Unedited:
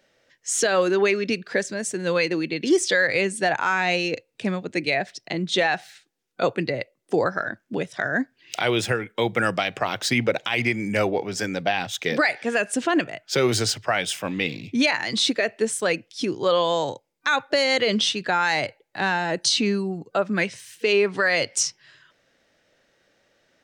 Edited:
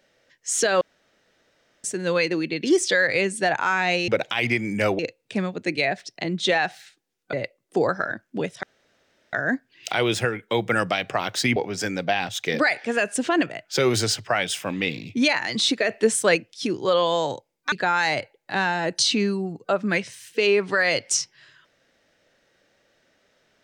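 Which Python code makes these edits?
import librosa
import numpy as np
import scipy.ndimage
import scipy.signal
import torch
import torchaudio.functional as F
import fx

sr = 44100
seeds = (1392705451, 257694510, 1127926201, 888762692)

y = fx.edit(x, sr, fx.room_tone_fill(start_s=0.81, length_s=1.03),
    fx.cut(start_s=6.42, length_s=0.28),
    fx.insert_room_tone(at_s=8.0, length_s=0.7),
    fx.move(start_s=10.23, length_s=0.91, to_s=4.08),
    fx.clip_gain(start_s=15.47, length_s=0.47, db=4.0),
    fx.cut(start_s=17.3, length_s=0.88), tone=tone)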